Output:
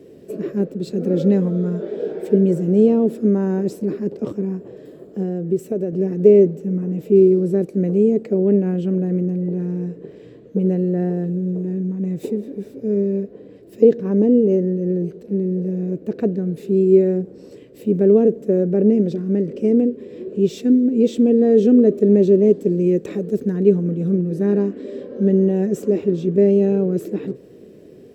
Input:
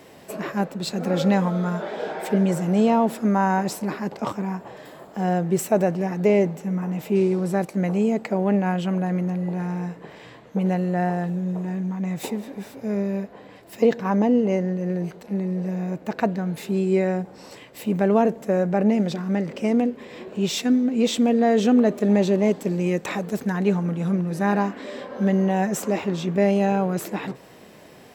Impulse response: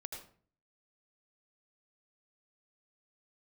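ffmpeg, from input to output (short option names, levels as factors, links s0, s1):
-filter_complex "[0:a]asettb=1/sr,asplit=3[s0][s1][s2];[s0]atrim=end=5.224[s3];[s1]atrim=start=5.22:end=5.93,asetpts=PTS-STARTPTS,afade=t=in:d=0.004:c=qsin,afade=t=out:st=0.706:d=0.004:c=qsin,acompressor=threshold=0.0562:ratio=2.5[s4];[s2]atrim=start=5.926[s5];[s3][s4]acrossfade=d=0.004:c1=hsin:c2=qsin[s6];[s6][s5]acrossfade=d=0.004:c1=qsin:c2=hsin,lowshelf=f=600:t=q:w=3:g=12.5,bandreject=f=2100:w=20,volume=0.299"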